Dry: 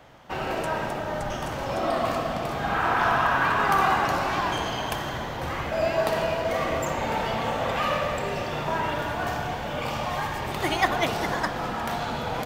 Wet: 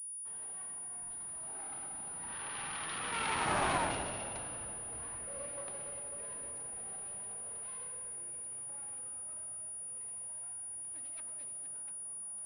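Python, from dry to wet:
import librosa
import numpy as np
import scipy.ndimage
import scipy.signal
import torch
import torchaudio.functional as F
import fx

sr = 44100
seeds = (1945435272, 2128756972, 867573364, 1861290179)

y = fx.self_delay(x, sr, depth_ms=0.38)
y = fx.doppler_pass(y, sr, speed_mps=53, closest_m=10.0, pass_at_s=3.66)
y = fx.pwm(y, sr, carrier_hz=9700.0)
y = F.gain(torch.from_numpy(y), -4.0).numpy()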